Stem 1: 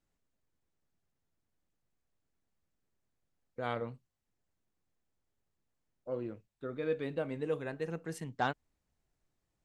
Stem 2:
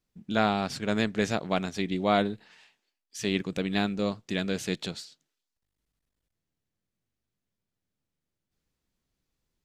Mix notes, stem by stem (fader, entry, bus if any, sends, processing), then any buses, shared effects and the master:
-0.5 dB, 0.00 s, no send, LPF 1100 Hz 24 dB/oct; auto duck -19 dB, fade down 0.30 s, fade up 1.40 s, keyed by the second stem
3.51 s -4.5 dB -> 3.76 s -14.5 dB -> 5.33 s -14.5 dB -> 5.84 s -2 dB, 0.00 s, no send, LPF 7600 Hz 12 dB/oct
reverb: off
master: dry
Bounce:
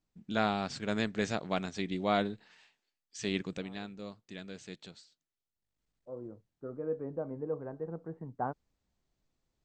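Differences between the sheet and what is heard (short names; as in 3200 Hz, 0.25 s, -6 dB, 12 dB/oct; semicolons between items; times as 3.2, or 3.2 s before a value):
stem 2: missing LPF 7600 Hz 12 dB/oct; master: extra Chebyshev low-pass 8500 Hz, order 10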